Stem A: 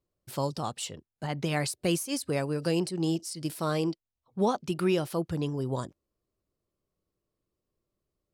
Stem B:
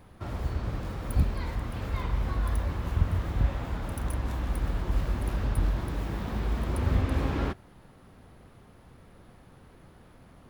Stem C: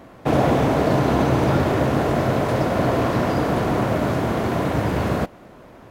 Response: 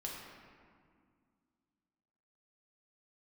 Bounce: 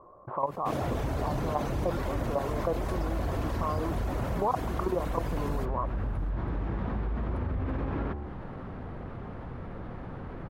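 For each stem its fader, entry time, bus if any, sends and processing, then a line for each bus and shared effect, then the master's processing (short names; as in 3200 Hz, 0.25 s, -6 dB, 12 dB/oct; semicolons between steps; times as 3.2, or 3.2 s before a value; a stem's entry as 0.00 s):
-2.0 dB, 0.00 s, bus A, no send, bell 650 Hz +14 dB 1.7 oct; level quantiser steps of 17 dB; synth low-pass 1100 Hz, resonance Q 10
0.0 dB, 0.60 s, bus A, no send, limiter -22.5 dBFS, peak gain reduction 10.5 dB; de-hum 72.15 Hz, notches 15
-19.0 dB, 0.40 s, no bus, no send, reverb removal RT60 0.73 s
bus A: 0.0 dB, LPF 1500 Hz 12 dB/oct; compressor 2:1, threshold -37 dBFS, peak gain reduction 14.5 dB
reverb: off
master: high shelf 5000 Hz +8.5 dB; fast leveller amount 50%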